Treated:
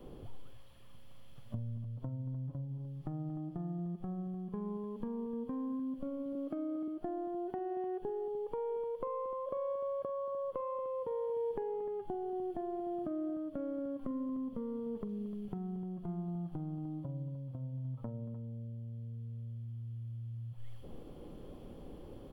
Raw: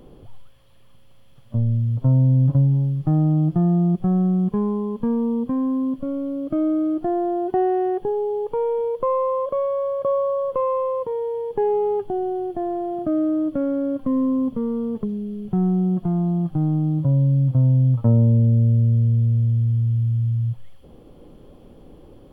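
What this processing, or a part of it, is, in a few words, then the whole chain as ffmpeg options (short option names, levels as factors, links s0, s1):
serial compression, peaks first: -filter_complex "[0:a]asettb=1/sr,asplit=3[s0][s1][s2];[s0]atrim=end=6.354[s3];[s1]atrim=start=6.35:end=6.88,asetpts=PTS-STARTPTS,afade=t=in:d=0.004:c=qsin,afade=t=out:st=0.526:d=0.004:c=qsin,highpass=210[s4];[s2]atrim=start=6.876[s5];[s3][s4]acrossfade=d=0.004:c1=hsin:c2=qsin[s6];[s6][s5]acrossfade=d=0.004:c1=qsin:c2=hsin,acompressor=threshold=0.0398:ratio=6,acompressor=threshold=0.02:ratio=2.5,adynamicequalizer=threshold=0.00355:dfrequency=110:dqfactor=1.1:tfrequency=110:tqfactor=1.1:attack=5:release=100:ratio=0.375:range=2.5:mode=cutabove:tftype=bell,aecho=1:1:45|230|301:0.119|0.15|0.211,volume=0.668"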